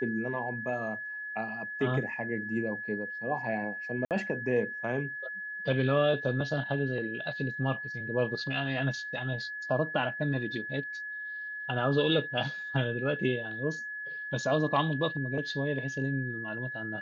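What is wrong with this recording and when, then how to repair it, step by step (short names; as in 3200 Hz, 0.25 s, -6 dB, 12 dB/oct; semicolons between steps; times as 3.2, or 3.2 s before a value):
tone 1700 Hz -36 dBFS
4.05–4.11 gap 58 ms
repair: notch 1700 Hz, Q 30; interpolate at 4.05, 58 ms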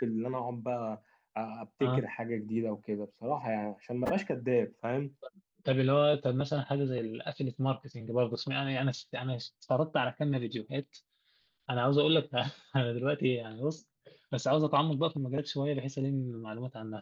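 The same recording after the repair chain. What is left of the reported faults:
none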